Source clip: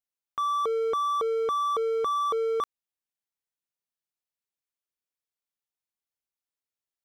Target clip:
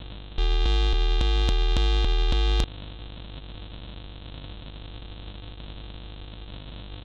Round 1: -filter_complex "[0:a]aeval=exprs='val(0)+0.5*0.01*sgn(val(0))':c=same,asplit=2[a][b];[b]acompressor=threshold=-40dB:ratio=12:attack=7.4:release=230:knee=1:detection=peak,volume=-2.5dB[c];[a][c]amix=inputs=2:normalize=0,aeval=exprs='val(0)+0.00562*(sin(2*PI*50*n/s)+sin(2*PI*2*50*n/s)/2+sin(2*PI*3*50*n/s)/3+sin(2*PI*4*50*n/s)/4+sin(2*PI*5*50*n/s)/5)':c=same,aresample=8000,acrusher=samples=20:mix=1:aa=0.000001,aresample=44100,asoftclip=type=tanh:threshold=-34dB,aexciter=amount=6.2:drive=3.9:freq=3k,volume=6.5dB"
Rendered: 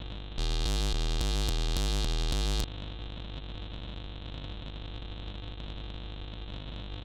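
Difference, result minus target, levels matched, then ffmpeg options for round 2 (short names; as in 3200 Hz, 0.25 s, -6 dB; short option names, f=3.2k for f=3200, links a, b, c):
soft clip: distortion +11 dB
-filter_complex "[0:a]aeval=exprs='val(0)+0.5*0.01*sgn(val(0))':c=same,asplit=2[a][b];[b]acompressor=threshold=-40dB:ratio=12:attack=7.4:release=230:knee=1:detection=peak,volume=-2.5dB[c];[a][c]amix=inputs=2:normalize=0,aeval=exprs='val(0)+0.00562*(sin(2*PI*50*n/s)+sin(2*PI*2*50*n/s)/2+sin(2*PI*3*50*n/s)/3+sin(2*PI*4*50*n/s)/4+sin(2*PI*5*50*n/s)/5)':c=same,aresample=8000,acrusher=samples=20:mix=1:aa=0.000001,aresample=44100,asoftclip=type=tanh:threshold=-23dB,aexciter=amount=6.2:drive=3.9:freq=3k,volume=6.5dB"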